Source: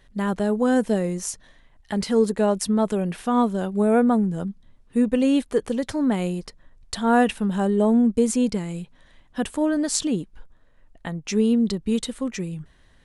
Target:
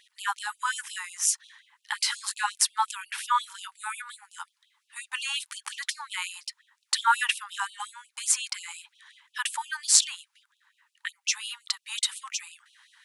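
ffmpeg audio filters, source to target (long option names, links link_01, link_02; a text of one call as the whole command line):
ffmpeg -i in.wav -filter_complex "[0:a]asettb=1/sr,asplit=3[link_01][link_02][link_03];[link_01]atrim=end=0.564[link_04];[link_02]atrim=start=0.56:end=1.29,asetpts=PTS-STARTPTS,afade=type=in:duration=0.004:curve=qsin,afade=type=out:start_time=0.726:duration=0.004:curve=qsin,bandreject=frequency=4300:width=8.4[link_05];[link_03]atrim=start=1.286[link_06];[link_04][link_05]acrossfade=duration=0.004:curve1=hsin:curve2=qsin[link_07];[link_07][link_06]acrossfade=duration=0.004:curve1=qsin:curve2=hsin,asettb=1/sr,asplit=3[link_08][link_09][link_10];[link_08]atrim=end=1.934[link_11];[link_09]atrim=start=1.93:end=2.52,asetpts=PTS-STARTPTS,afade=type=in:duration=0.004:curve=qsin,afade=type=out:start_time=0.586:duration=0.004:curve=qsin,asplit=2[link_12][link_13];[link_13]adelay=20,volume=-4.5dB[link_14];[link_12][link_14]amix=inputs=2:normalize=0,atrim=end_sample=26019[link_15];[link_10]atrim=start=2.516[link_16];[link_11][link_15]acrossfade=duration=0.004:curve1=hsin:curve2=qsin[link_17];[link_17][link_16]acrossfade=duration=0.004:curve1=qsin:curve2=hsin,afftfilt=real='re*gte(b*sr/1024,780*pow(2600/780,0.5+0.5*sin(2*PI*5.6*pts/sr)))':imag='im*gte(b*sr/1024,780*pow(2600/780,0.5+0.5*sin(2*PI*5.6*pts/sr)))':win_size=1024:overlap=0.75,volume=6.5dB" out.wav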